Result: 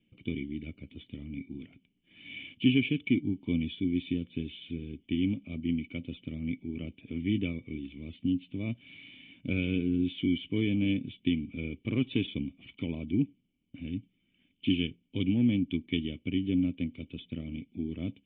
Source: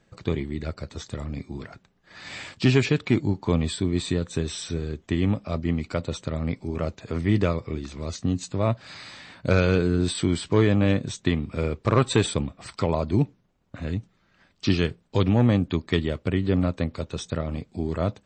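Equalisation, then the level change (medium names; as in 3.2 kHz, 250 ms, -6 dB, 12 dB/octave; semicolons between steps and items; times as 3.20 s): cascade formant filter i; peaking EQ 2.9 kHz +12.5 dB 1.2 oct; 0.0 dB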